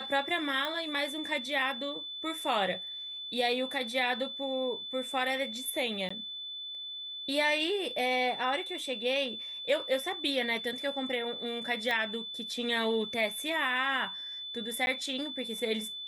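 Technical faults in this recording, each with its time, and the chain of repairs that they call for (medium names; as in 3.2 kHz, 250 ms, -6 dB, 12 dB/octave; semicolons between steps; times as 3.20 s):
whine 3.5 kHz -38 dBFS
0.65 s: pop -21 dBFS
6.09–6.11 s: dropout 15 ms
11.91 s: pop -19 dBFS
14.86–14.87 s: dropout 11 ms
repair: de-click; band-stop 3.5 kHz, Q 30; interpolate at 6.09 s, 15 ms; interpolate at 14.86 s, 11 ms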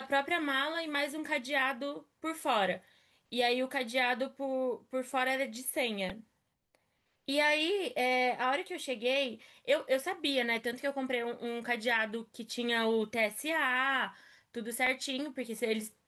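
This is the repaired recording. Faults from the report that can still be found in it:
11.91 s: pop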